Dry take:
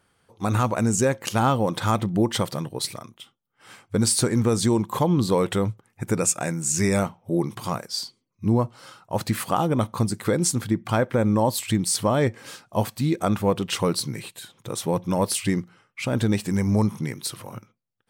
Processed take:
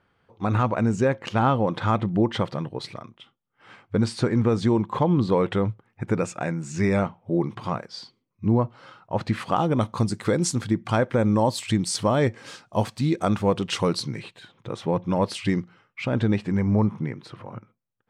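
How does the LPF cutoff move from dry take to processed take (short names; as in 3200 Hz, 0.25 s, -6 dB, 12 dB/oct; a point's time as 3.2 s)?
9.18 s 2900 Hz
9.89 s 6800 Hz
13.9 s 6800 Hz
14.39 s 2900 Hz
15.04 s 2900 Hz
15.54 s 4800 Hz
16.92 s 1900 Hz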